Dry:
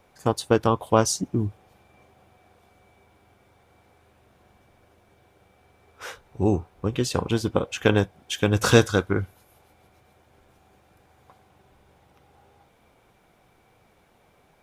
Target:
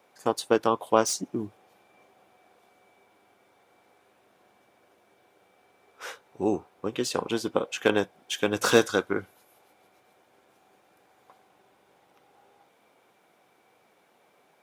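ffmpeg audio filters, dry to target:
ffmpeg -i in.wav -filter_complex "[0:a]highpass=270,acrossover=split=2100[link_01][link_02];[link_02]asoftclip=type=hard:threshold=-22.5dB[link_03];[link_01][link_03]amix=inputs=2:normalize=0,volume=-1.5dB" out.wav

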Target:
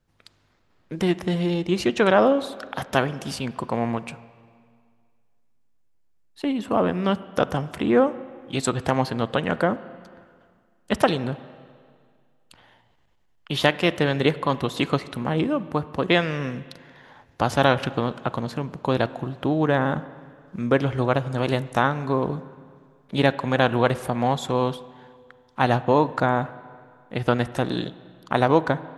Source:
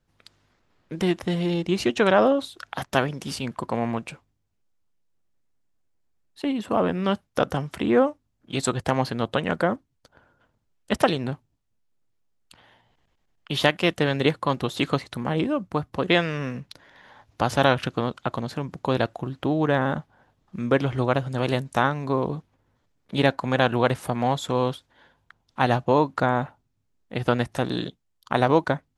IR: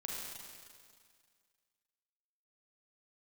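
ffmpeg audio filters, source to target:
-filter_complex "[0:a]asplit=2[link_01][link_02];[1:a]atrim=start_sample=2205,lowpass=3000[link_03];[link_02][link_03]afir=irnorm=-1:irlink=0,volume=-13.5dB[link_04];[link_01][link_04]amix=inputs=2:normalize=0"

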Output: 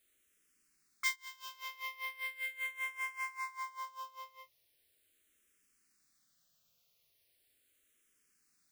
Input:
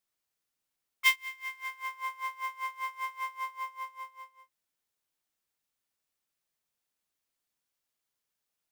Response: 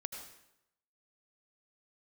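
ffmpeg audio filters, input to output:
-filter_complex "[0:a]acompressor=threshold=-52dB:ratio=2,equalizer=frequency=900:width_type=o:width=0.56:gain=-14.5,asplit=2[link_01][link_02];[link_02]afreqshift=-0.39[link_03];[link_01][link_03]amix=inputs=2:normalize=1,volume=14dB"

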